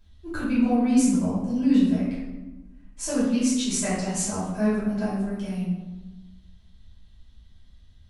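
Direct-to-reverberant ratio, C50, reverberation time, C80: -11.0 dB, 0.0 dB, 1.2 s, 3.5 dB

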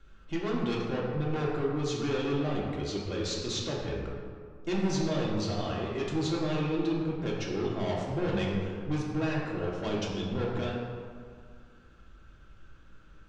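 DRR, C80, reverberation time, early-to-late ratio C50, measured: -4.5 dB, 2.5 dB, 2.0 s, 0.5 dB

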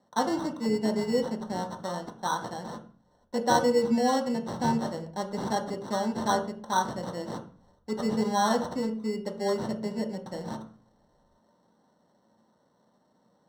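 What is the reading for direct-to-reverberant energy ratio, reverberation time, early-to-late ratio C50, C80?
2.0 dB, 0.40 s, 10.5 dB, 14.5 dB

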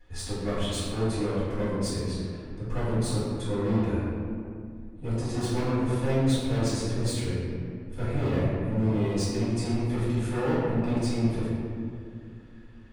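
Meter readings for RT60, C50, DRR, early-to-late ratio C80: 2.3 s, -3.0 dB, -15.0 dB, -0.5 dB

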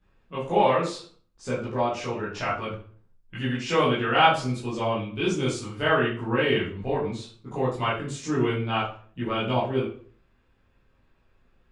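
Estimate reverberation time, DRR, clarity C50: 0.45 s, -10.5 dB, 5.0 dB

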